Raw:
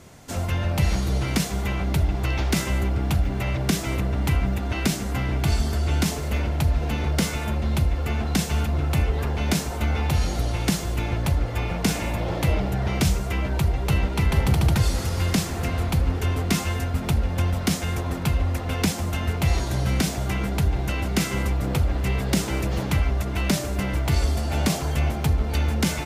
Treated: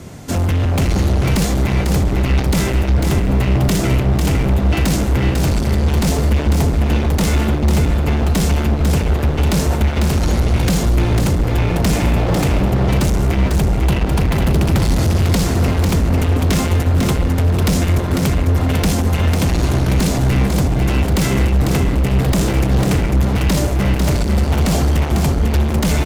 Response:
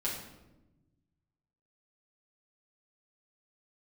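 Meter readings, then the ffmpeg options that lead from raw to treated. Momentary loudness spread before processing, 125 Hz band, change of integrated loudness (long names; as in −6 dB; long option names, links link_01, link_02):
3 LU, +8.5 dB, +8.0 dB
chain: -filter_complex "[0:a]highpass=frequency=43:poles=1,acrossover=split=420|6600[link_01][link_02][link_03];[link_01]acontrast=79[link_04];[link_04][link_02][link_03]amix=inputs=3:normalize=0,apsyclip=13.5dB,asoftclip=type=hard:threshold=-9dB,aecho=1:1:498:0.562,volume=-5dB"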